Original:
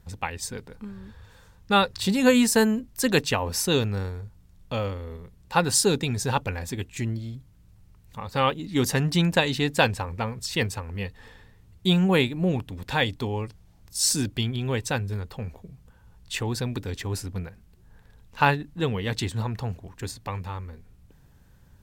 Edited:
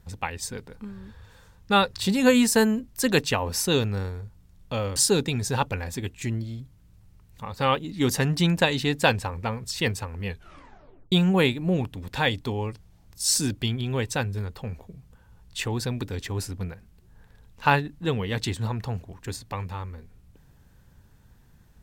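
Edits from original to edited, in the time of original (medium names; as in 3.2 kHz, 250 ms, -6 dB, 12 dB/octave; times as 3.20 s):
4.96–5.71 s: delete
11.02 s: tape stop 0.85 s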